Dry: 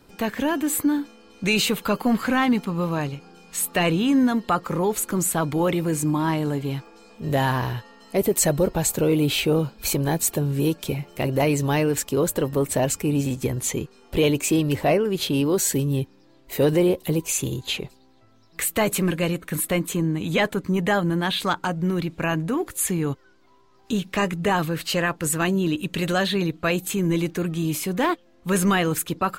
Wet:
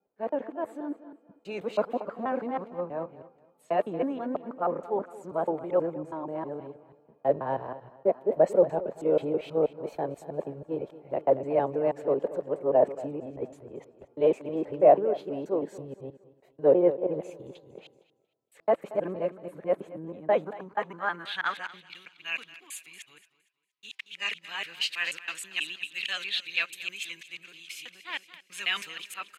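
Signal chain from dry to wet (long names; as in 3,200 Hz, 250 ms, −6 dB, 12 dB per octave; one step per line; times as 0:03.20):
reversed piece by piece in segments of 161 ms
on a send: repeating echo 232 ms, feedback 50%, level −13 dB
on the sum: band-pass filter sweep 600 Hz → 2,500 Hz, 0:20.26–0:21.90
multiband upward and downward expander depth 70%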